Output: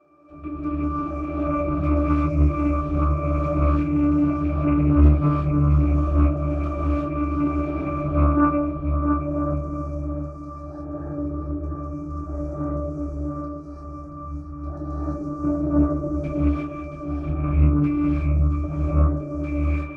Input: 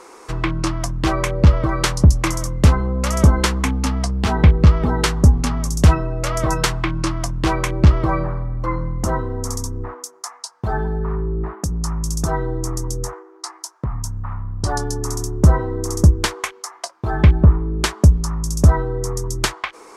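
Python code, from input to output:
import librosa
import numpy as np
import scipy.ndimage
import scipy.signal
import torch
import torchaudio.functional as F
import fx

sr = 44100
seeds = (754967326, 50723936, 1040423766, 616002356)

y = fx.low_shelf_res(x, sr, hz=200.0, db=-12.5, q=1.5)
y = fx.transient(y, sr, attack_db=-4, sustain_db=2)
y = fx.whisperise(y, sr, seeds[0])
y = fx.chorus_voices(y, sr, voices=6, hz=0.26, base_ms=25, depth_ms=2.4, mix_pct=35)
y = fx.octave_resonator(y, sr, note='D', decay_s=0.42)
y = fx.echo_feedback(y, sr, ms=678, feedback_pct=40, wet_db=-8.0)
y = fx.rev_gated(y, sr, seeds[1], gate_ms=380, shape='rising', drr_db=-7.0)
y = fx.doppler_dist(y, sr, depth_ms=0.37)
y = F.gain(torch.from_numpy(y), 8.0).numpy()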